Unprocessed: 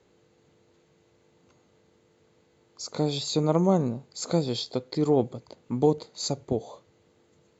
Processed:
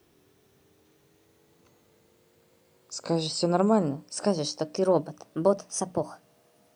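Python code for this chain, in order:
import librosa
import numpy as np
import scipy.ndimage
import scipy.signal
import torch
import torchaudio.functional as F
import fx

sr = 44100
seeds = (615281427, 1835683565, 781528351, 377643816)

y = fx.speed_glide(x, sr, from_pct=83, to_pct=142)
y = fx.hum_notches(y, sr, base_hz=60, count=5)
y = fx.quant_dither(y, sr, seeds[0], bits=12, dither='triangular')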